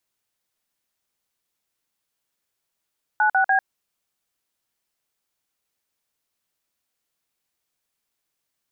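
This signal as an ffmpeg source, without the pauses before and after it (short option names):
-f lavfi -i "aevalsrc='0.126*clip(min(mod(t,0.146),0.098-mod(t,0.146))/0.002,0,1)*(eq(floor(t/0.146),0)*(sin(2*PI*852*mod(t,0.146))+sin(2*PI*1477*mod(t,0.146)))+eq(floor(t/0.146),1)*(sin(2*PI*770*mod(t,0.146))+sin(2*PI*1477*mod(t,0.146)))+eq(floor(t/0.146),2)*(sin(2*PI*770*mod(t,0.146))+sin(2*PI*1633*mod(t,0.146))))':d=0.438:s=44100"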